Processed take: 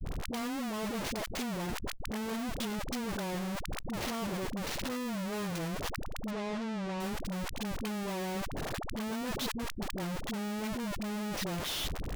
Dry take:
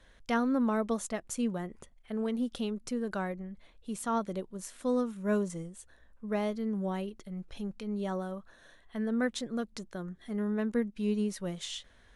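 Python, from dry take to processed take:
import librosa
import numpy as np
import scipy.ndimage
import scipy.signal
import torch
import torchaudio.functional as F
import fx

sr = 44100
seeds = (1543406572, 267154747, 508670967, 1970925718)

p1 = fx.cvsd(x, sr, bps=32000)
p2 = fx.peak_eq(p1, sr, hz=1400.0, db=-9.5, octaves=0.78)
p3 = fx.over_compress(p2, sr, threshold_db=-42.0, ratio=-1.0)
p4 = p2 + F.gain(torch.from_numpy(p3), -0.5).numpy()
p5 = fx.power_curve(p4, sr, exponent=3.0, at=(9.45, 9.85))
p6 = fx.schmitt(p5, sr, flips_db=-47.5)
p7 = fx.air_absorb(p6, sr, metres=100.0, at=(6.25, 6.95))
p8 = fx.dispersion(p7, sr, late='highs', ms=54.0, hz=500.0)
p9 = fx.sustainer(p8, sr, db_per_s=32.0)
y = F.gain(torch.from_numpy(p9), -3.0).numpy()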